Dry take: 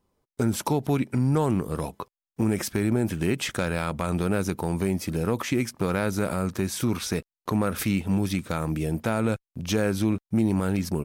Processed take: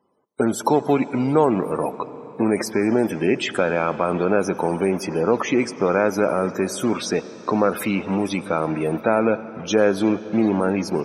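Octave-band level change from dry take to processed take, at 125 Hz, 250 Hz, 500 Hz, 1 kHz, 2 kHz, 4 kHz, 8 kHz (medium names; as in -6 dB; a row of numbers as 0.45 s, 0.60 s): -3.5 dB, +4.0 dB, +9.5 dB, +8.5 dB, +6.0 dB, +2.5 dB, +1.0 dB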